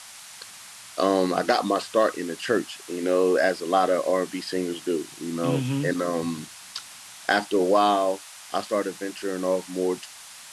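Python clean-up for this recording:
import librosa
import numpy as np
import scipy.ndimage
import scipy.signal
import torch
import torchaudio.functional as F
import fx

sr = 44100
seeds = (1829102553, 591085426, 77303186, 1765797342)

y = fx.fix_declick_ar(x, sr, threshold=6.5)
y = fx.noise_reduce(y, sr, print_start_s=0.47, print_end_s=0.97, reduce_db=25.0)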